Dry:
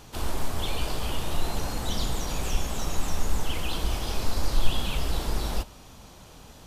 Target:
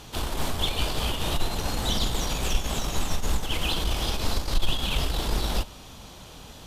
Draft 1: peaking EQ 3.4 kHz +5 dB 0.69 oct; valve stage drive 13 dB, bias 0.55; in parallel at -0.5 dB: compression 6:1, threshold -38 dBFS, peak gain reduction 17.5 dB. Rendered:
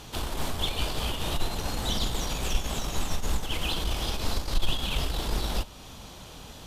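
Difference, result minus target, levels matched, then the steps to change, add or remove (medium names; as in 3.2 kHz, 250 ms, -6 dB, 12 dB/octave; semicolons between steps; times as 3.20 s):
compression: peak gain reduction +9 dB
change: compression 6:1, threshold -27.5 dBFS, peak gain reduction 9 dB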